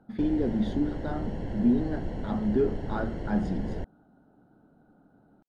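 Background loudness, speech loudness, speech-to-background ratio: -36.5 LUFS, -29.5 LUFS, 7.0 dB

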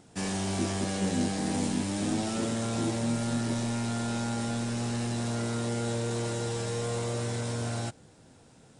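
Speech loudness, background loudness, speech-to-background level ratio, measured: -36.5 LUFS, -31.5 LUFS, -5.0 dB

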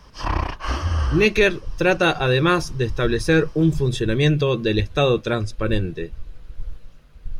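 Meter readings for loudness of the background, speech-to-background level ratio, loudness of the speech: -25.5 LUFS, 5.5 dB, -20.0 LUFS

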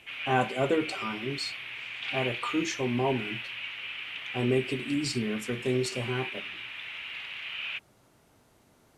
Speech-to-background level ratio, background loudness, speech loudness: 5.0 dB, -36.0 LUFS, -31.0 LUFS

